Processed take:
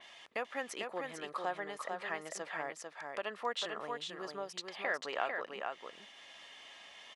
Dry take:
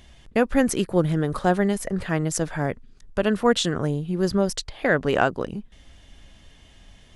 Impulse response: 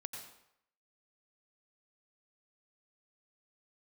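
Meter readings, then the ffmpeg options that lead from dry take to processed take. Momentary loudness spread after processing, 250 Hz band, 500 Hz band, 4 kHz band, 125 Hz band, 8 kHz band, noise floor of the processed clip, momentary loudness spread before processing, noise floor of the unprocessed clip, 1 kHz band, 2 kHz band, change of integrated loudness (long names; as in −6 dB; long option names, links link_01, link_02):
15 LU, −27.5 dB, −17.0 dB, −10.5 dB, −34.5 dB, −16.5 dB, −57 dBFS, 8 LU, −52 dBFS, −11.0 dB, −10.5 dB, −16.0 dB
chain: -af "acompressor=threshold=-44dB:ratio=2,highpass=880,aemphasis=mode=reproduction:type=50fm,bandreject=frequency=1500:width=8.1,aecho=1:1:447:0.596,adynamicequalizer=threshold=0.001:dfrequency=4000:dqfactor=0.7:tfrequency=4000:tqfactor=0.7:attack=5:release=100:ratio=0.375:range=2:mode=cutabove:tftype=highshelf,volume=6dB"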